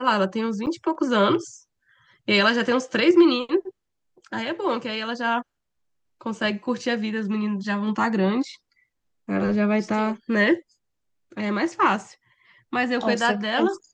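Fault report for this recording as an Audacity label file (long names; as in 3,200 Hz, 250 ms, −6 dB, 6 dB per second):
0.660000	0.670000	drop-out 8.6 ms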